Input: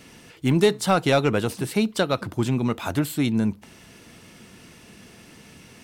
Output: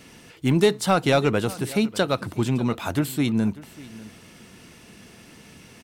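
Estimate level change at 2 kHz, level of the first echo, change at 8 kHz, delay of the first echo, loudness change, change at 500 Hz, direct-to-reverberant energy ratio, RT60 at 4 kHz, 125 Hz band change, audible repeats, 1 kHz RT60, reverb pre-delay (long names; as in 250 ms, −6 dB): 0.0 dB, −19.5 dB, 0.0 dB, 594 ms, 0.0 dB, 0.0 dB, no reverb audible, no reverb audible, 0.0 dB, 1, no reverb audible, no reverb audible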